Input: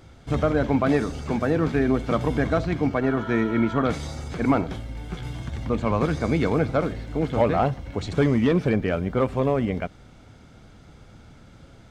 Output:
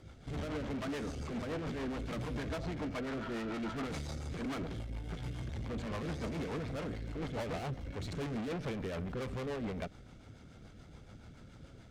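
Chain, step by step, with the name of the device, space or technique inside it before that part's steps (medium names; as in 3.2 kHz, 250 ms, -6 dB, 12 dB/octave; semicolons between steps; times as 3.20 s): overdriven rotary cabinet (valve stage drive 33 dB, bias 0.5; rotary cabinet horn 7 Hz); trim -1.5 dB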